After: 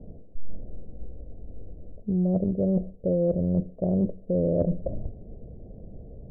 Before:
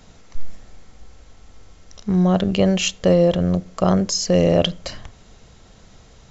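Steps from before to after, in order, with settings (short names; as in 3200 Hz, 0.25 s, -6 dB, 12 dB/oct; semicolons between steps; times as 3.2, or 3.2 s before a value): steep low-pass 620 Hz 48 dB/oct; reverse; compressor 6:1, threshold -28 dBFS, peak gain reduction 15.5 dB; reverse; gain +6 dB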